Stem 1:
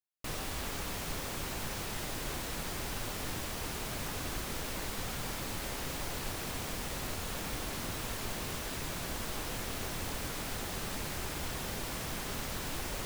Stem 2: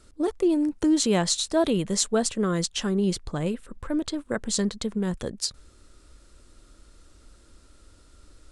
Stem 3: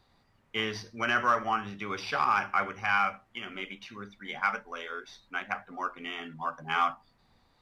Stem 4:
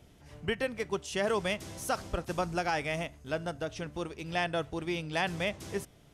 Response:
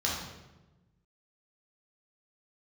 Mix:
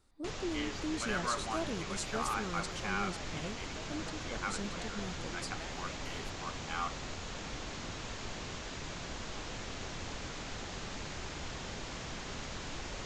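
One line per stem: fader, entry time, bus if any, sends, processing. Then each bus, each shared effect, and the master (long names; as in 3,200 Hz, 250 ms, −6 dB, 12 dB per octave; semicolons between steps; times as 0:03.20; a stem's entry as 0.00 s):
−2.5 dB, 0.00 s, no send, elliptic low-pass filter 7,100 Hz, stop band 40 dB
−16.0 dB, 0.00 s, no send, no processing
−10.5 dB, 0.00 s, no send, no processing
−10.0 dB, 0.45 s, no send, downward compressor, threshold −37 dBFS, peak gain reduction 11.5 dB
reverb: not used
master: no processing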